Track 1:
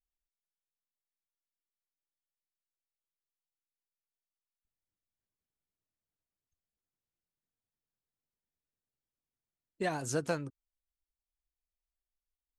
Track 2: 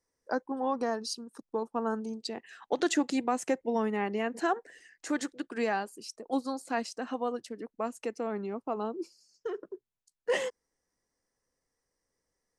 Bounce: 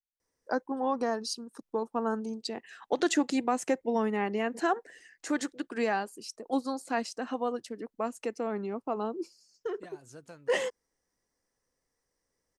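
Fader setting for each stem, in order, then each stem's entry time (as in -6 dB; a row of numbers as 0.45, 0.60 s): -16.5, +1.0 dB; 0.00, 0.20 s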